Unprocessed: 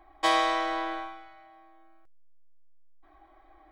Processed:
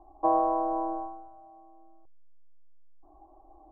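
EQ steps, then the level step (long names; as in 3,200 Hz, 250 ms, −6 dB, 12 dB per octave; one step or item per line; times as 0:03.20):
elliptic low-pass filter 950 Hz, stop band 60 dB
+3.5 dB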